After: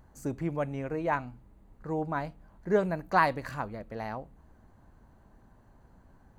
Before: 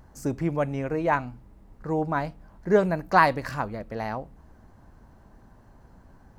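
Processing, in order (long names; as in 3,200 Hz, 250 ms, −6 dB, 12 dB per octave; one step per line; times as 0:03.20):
notch filter 5,300 Hz, Q 5.9
level −5.5 dB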